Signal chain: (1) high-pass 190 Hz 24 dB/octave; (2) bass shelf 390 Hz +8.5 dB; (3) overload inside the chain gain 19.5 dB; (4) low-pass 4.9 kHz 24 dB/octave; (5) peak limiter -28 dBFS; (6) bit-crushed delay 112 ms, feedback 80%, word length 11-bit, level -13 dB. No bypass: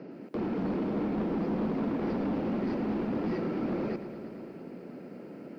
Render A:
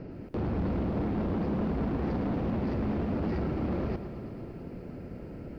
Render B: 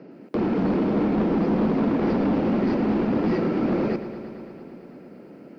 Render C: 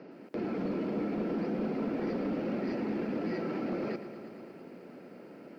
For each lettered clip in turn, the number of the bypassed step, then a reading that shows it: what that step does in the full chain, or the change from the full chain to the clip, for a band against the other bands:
1, 125 Hz band +7.0 dB; 5, mean gain reduction 5.5 dB; 2, 2 kHz band +3.0 dB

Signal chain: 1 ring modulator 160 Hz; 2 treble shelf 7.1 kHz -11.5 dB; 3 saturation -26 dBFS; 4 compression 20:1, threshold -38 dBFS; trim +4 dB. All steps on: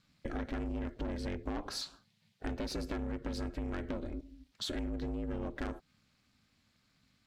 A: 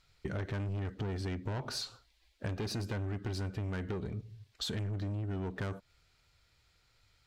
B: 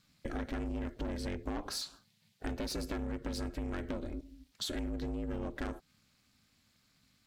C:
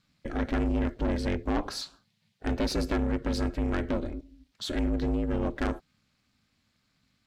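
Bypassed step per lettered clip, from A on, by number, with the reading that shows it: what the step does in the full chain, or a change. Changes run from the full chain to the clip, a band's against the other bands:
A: 1, 125 Hz band +7.5 dB; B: 2, 8 kHz band +3.5 dB; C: 4, mean gain reduction 7.5 dB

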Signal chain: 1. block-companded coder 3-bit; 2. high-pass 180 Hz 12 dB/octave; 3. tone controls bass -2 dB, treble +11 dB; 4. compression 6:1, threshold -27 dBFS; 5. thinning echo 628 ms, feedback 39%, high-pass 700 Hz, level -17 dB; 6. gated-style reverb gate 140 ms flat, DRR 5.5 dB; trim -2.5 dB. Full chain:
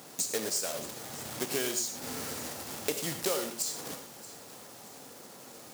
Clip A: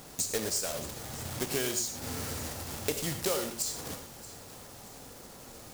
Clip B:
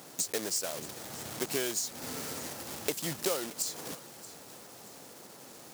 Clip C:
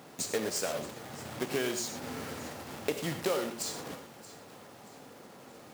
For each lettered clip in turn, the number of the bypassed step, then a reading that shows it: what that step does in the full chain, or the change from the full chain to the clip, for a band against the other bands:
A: 2, 125 Hz band +6.5 dB; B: 6, loudness change -1.0 LU; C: 3, 8 kHz band -7.0 dB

